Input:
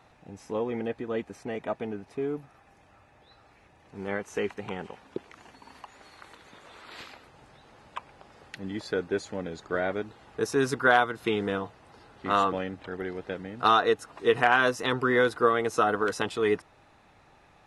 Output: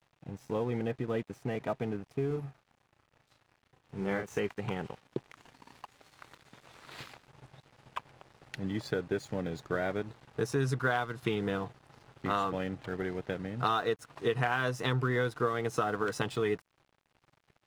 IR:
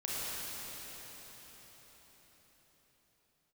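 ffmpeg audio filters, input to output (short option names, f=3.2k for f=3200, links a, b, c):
-filter_complex "[0:a]equalizer=f=130:t=o:w=0.53:g=14.5,acompressor=threshold=-28dB:ratio=3,aeval=exprs='sgn(val(0))*max(abs(val(0))-0.00266,0)':c=same,asettb=1/sr,asplit=3[a][b][c];[a]atrim=end=2.274[d];[b]atrim=start=2.27:end=4.4,asetpts=PTS-STARTPTS,afade=t=in:d=0.004:c=qsin,afade=t=out:st=2.126:d=0.004:c=qsin,asplit=2[e][f];[f]adelay=36,volume=-4.5dB[g];[e][g]amix=inputs=2:normalize=0,atrim=end_sample=93933[h];[c]atrim=start=4.396[i];[d][h]acrossfade=d=0.004:c1=hsin:c2=qsin[j];[j][i]acrossfade=d=0.004:c1=qsin:c2=hsin"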